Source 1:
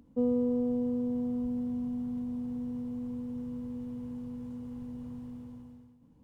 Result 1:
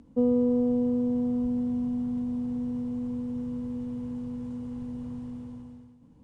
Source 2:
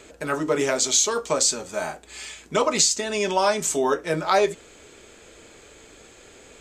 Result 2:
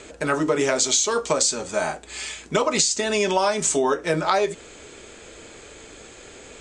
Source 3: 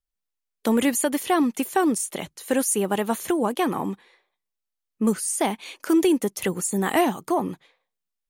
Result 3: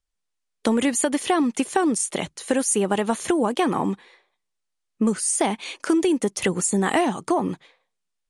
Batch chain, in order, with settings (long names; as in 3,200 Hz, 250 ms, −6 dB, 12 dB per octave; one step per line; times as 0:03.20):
Butterworth low-pass 10,000 Hz 48 dB per octave
downward compressor, threshold −22 dBFS
level +5 dB